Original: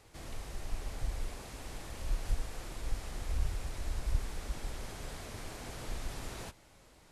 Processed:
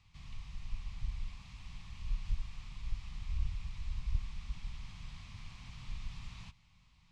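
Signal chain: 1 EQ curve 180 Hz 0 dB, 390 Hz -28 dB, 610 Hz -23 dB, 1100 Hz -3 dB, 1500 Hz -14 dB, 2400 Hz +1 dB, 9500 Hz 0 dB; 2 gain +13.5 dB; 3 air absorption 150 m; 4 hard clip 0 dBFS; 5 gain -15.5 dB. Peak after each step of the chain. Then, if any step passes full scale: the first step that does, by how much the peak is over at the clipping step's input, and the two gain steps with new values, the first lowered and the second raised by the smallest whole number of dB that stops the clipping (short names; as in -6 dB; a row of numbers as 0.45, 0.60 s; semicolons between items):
-18.0, -4.5, -4.5, -4.5, -20.0 dBFS; no overload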